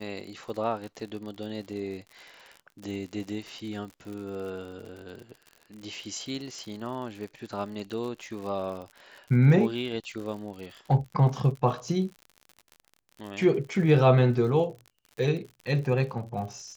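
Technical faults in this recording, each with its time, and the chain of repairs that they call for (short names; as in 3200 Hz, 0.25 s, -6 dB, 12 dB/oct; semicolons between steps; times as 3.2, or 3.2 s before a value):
crackle 59/s -37 dBFS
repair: de-click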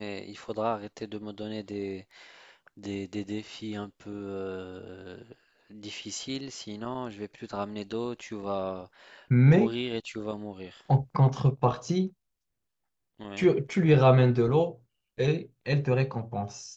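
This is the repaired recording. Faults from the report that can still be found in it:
none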